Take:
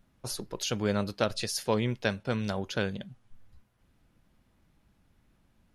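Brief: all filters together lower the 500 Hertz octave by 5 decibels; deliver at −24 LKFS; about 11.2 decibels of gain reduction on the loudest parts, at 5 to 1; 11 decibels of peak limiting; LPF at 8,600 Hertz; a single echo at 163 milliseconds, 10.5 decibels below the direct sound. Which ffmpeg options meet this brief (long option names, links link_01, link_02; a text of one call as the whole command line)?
ffmpeg -i in.wav -af "lowpass=8600,equalizer=frequency=500:width_type=o:gain=-6,acompressor=threshold=-38dB:ratio=5,alimiter=level_in=10dB:limit=-24dB:level=0:latency=1,volume=-10dB,aecho=1:1:163:0.299,volume=20.5dB" out.wav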